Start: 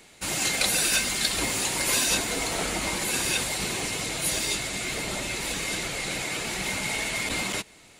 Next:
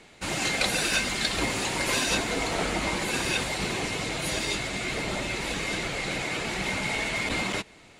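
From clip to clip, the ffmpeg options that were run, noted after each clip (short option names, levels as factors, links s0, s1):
-af "aemphasis=mode=reproduction:type=50fm,volume=1.26"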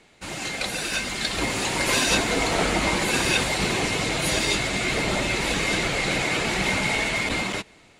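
-af "dynaudnorm=f=420:g=7:m=3.16,volume=0.668"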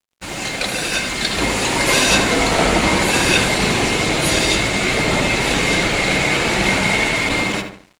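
-filter_complex "[0:a]asplit=2[s0][s1];[s1]adelay=76,lowpass=f=2300:p=1,volume=0.562,asplit=2[s2][s3];[s3]adelay=76,lowpass=f=2300:p=1,volume=0.5,asplit=2[s4][s5];[s5]adelay=76,lowpass=f=2300:p=1,volume=0.5,asplit=2[s6][s7];[s7]adelay=76,lowpass=f=2300:p=1,volume=0.5,asplit=2[s8][s9];[s9]adelay=76,lowpass=f=2300:p=1,volume=0.5,asplit=2[s10][s11];[s11]adelay=76,lowpass=f=2300:p=1,volume=0.5[s12];[s0][s2][s4][s6][s8][s10][s12]amix=inputs=7:normalize=0,aeval=exprs='sgn(val(0))*max(abs(val(0))-0.00398,0)':c=same,volume=2.11"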